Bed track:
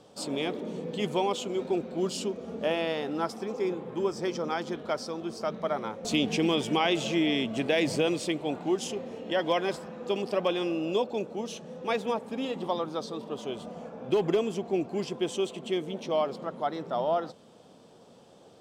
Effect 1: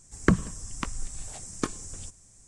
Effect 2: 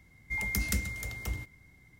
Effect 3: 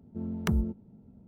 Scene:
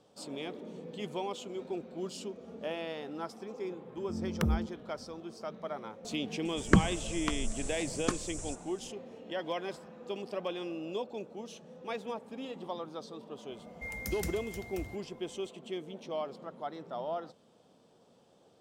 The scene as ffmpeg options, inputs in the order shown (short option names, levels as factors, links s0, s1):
-filter_complex "[0:a]volume=0.355[s0];[3:a]atrim=end=1.27,asetpts=PTS-STARTPTS,volume=0.75,afade=t=in:d=0.004:c=hsin,afade=t=out:st=1.266:d=0.004:c=hsin,adelay=3940[s1];[1:a]atrim=end=2.47,asetpts=PTS-STARTPTS,volume=0.841,afade=t=in:d=0.004:c=hsin,afade=t=out:st=2.466:d=0.004:c=hsin,adelay=6450[s2];[2:a]atrim=end=1.99,asetpts=PTS-STARTPTS,volume=0.398,afade=t=in:d=0.004:c=hsin,afade=t=out:st=1.986:d=0.004:c=hsin,adelay=13510[s3];[s0][s1][s2][s3]amix=inputs=4:normalize=0"